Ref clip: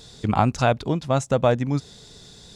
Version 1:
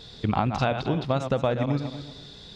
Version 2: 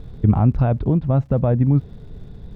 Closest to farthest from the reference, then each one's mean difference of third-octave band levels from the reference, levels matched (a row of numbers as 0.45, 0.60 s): 1, 2; 6.0, 8.5 dB